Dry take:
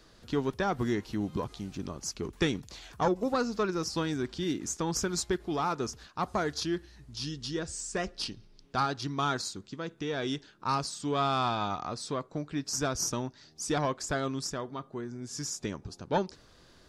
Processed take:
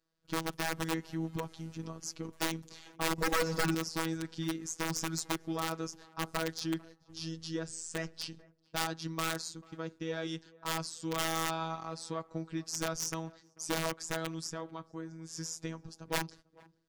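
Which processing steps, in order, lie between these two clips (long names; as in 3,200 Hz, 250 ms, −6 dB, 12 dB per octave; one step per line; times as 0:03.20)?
noise gate −48 dBFS, range −22 dB
parametric band 3,900 Hz −2.5 dB 0.57 octaves
wrap-around overflow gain 21.5 dB
phases set to zero 162 Hz
tape delay 444 ms, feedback 52%, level −21.5 dB, low-pass 1,100 Hz
0:03.18–0:03.75: power curve on the samples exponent 0.7
level −2 dB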